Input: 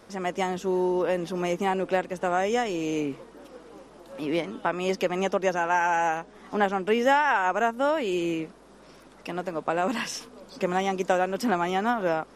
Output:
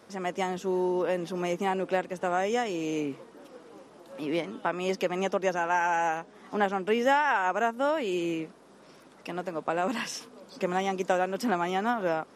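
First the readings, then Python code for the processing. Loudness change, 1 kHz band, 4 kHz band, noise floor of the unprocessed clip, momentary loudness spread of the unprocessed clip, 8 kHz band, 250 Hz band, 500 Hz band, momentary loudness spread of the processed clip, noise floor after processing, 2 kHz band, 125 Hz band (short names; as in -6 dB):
-2.5 dB, -2.5 dB, -2.5 dB, -52 dBFS, 11 LU, -2.5 dB, -2.5 dB, -2.5 dB, 11 LU, -54 dBFS, -2.5 dB, -3.0 dB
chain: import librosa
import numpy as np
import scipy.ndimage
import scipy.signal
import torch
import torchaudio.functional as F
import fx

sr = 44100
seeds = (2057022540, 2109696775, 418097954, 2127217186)

y = scipy.signal.sosfilt(scipy.signal.butter(2, 100.0, 'highpass', fs=sr, output='sos'), x)
y = y * librosa.db_to_amplitude(-2.5)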